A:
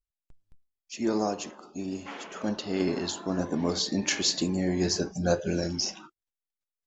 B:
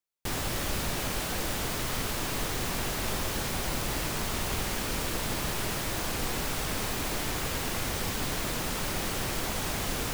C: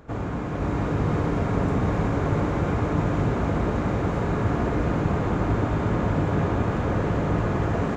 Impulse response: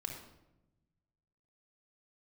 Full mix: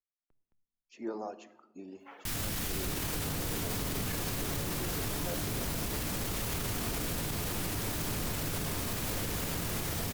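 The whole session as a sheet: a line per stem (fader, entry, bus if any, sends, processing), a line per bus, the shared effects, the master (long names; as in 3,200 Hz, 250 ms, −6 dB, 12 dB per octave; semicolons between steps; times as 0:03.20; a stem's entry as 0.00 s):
−10.5 dB, 0.00 s, send −8.5 dB, reverb reduction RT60 1 s; three-way crossover with the lows and the highs turned down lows −14 dB, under 200 Hz, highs −14 dB, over 2,600 Hz
0.0 dB, 2.00 s, no send, graphic EQ with 10 bands 500 Hz −12 dB, 1,000 Hz −4 dB, 16,000 Hz +6 dB
−9.0 dB, 2.25 s, no send, no processing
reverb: on, RT60 0.95 s, pre-delay 27 ms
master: brickwall limiter −25 dBFS, peak gain reduction 11 dB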